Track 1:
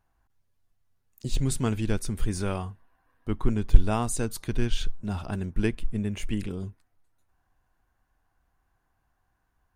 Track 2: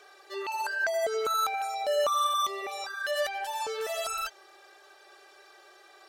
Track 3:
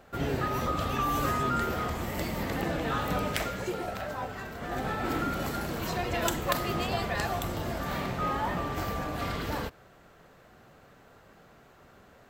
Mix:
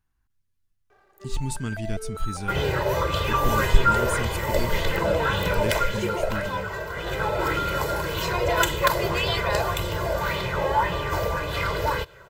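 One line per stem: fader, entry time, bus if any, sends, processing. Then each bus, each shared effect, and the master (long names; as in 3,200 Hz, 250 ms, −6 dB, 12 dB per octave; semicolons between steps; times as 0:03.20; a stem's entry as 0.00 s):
−2.0 dB, 0.00 s, no send, parametric band 660 Hz −13.5 dB 1.2 octaves
+3.0 dB, 0.90 s, no send, running median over 15 samples; bass and treble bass +12 dB, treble −8 dB; automatic ducking −11 dB, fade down 1.55 s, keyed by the first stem
+2.5 dB, 2.35 s, no send, comb filter 2 ms, depth 94%; auto-filter bell 1.8 Hz 590–3,500 Hz +9 dB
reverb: not used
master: no processing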